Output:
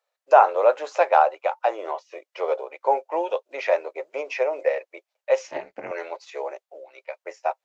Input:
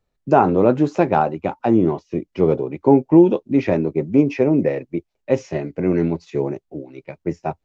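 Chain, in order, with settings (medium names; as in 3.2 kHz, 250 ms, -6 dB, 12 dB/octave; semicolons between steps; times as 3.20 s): elliptic high-pass 540 Hz, stop band 60 dB; 5.47–5.91 s: AM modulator 240 Hz, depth 80%; trim +2 dB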